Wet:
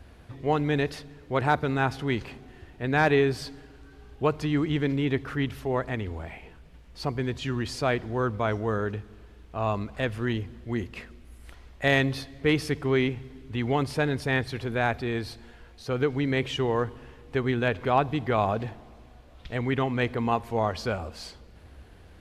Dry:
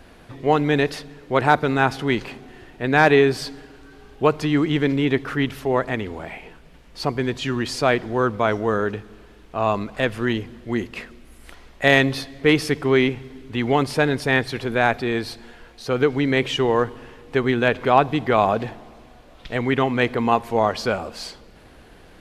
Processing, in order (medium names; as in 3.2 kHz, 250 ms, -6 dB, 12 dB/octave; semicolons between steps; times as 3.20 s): peaking EQ 74 Hz +14 dB 1.2 oct; trim -7.5 dB